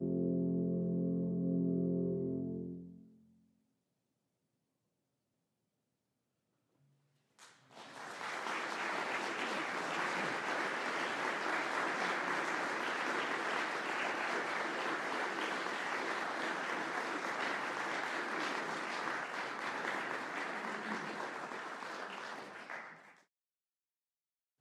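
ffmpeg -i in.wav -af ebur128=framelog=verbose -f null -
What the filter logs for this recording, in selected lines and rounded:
Integrated loudness:
  I:         -37.5 LUFS
  Threshold: -47.9 LUFS
Loudness range:
  LRA:        10.0 LU
  Threshold: -58.6 LUFS
  LRA low:   -46.1 LUFS
  LRA high:  -36.0 LUFS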